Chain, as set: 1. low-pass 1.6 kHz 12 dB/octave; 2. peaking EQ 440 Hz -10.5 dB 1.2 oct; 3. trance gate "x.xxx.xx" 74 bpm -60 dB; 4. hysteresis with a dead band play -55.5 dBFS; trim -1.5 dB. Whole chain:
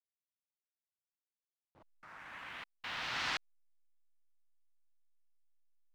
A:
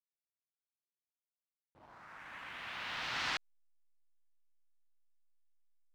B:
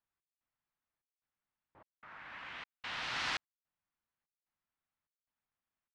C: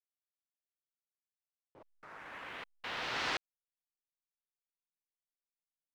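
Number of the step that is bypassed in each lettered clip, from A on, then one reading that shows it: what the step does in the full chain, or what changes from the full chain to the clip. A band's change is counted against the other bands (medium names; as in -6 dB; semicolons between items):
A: 3, momentary loudness spread change +2 LU; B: 4, distortion -20 dB; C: 2, 500 Hz band +6.5 dB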